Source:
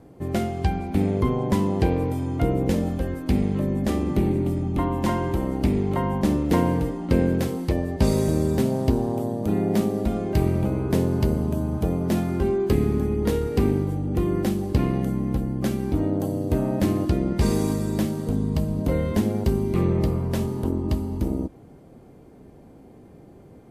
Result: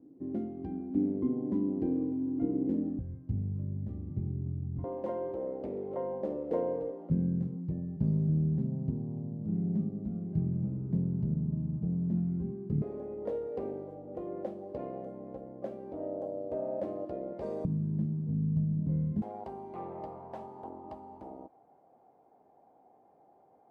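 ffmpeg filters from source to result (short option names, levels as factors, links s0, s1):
-af "asetnsamples=n=441:p=0,asendcmd='2.99 bandpass f 110;4.84 bandpass f 520;7.1 bandpass f 160;12.82 bandpass f 580;17.65 bandpass f 160;19.22 bandpass f 780',bandpass=f=280:t=q:w=5.3:csg=0"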